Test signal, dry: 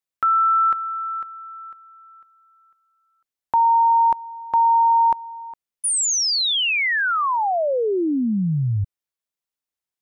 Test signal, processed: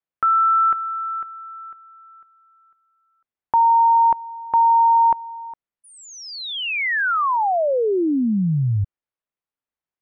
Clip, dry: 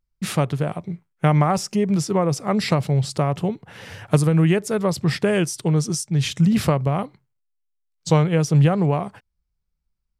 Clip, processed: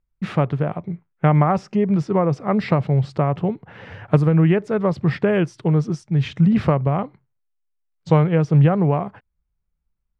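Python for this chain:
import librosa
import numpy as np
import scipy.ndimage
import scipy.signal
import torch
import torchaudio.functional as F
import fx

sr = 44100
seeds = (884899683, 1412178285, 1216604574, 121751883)

y = scipy.signal.sosfilt(scipy.signal.butter(2, 2100.0, 'lowpass', fs=sr, output='sos'), x)
y = F.gain(torch.from_numpy(y), 1.5).numpy()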